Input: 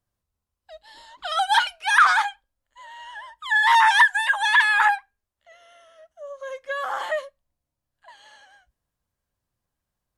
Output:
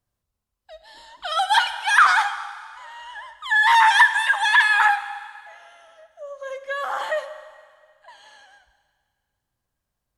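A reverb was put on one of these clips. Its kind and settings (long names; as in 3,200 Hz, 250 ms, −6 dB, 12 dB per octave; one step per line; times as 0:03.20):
dense smooth reverb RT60 1.9 s, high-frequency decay 1×, DRR 10 dB
level +1 dB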